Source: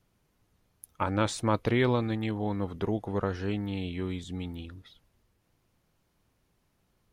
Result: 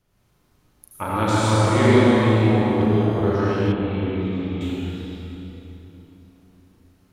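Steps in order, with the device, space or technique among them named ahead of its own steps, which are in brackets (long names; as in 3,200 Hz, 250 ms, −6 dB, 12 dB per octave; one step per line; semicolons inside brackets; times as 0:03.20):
tunnel (flutter between parallel walls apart 6.3 metres, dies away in 0.39 s; convolution reverb RT60 3.4 s, pre-delay 71 ms, DRR −8.5 dB)
0:03.72–0:04.61: high-frequency loss of the air 340 metres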